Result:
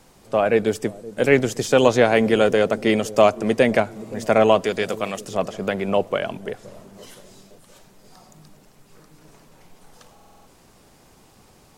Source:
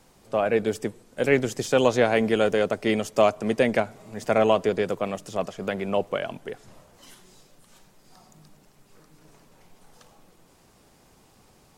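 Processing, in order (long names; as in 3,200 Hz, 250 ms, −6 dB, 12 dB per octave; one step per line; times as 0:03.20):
0:04.64–0:05.25: tilt shelving filter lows −5.5 dB, about 1,300 Hz
delay with a low-pass on its return 521 ms, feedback 45%, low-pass 430 Hz, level −15 dB
buffer that repeats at 0:10.14, samples 2,048, times 6
level +4.5 dB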